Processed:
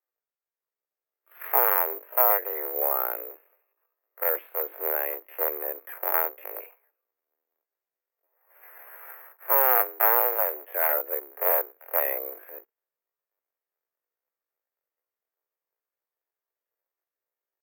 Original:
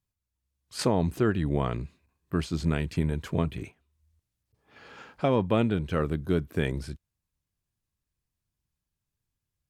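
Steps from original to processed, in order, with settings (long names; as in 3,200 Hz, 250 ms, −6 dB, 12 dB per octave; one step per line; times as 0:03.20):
sub-harmonics by changed cycles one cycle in 2, inverted
single-sideband voice off tune +140 Hz 320–2,100 Hz
bad sample-rate conversion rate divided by 3×, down none, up zero stuff
tempo change 0.55×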